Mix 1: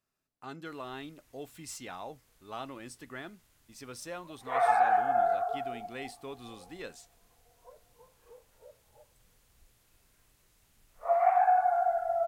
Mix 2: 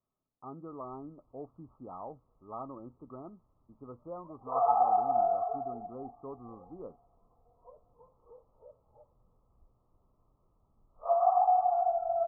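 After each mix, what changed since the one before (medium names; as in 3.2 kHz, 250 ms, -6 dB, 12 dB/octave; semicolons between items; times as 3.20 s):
master: add Chebyshev low-pass 1.3 kHz, order 10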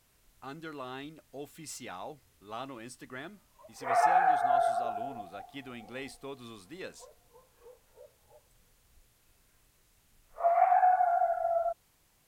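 background: entry -0.65 s; master: remove Chebyshev low-pass 1.3 kHz, order 10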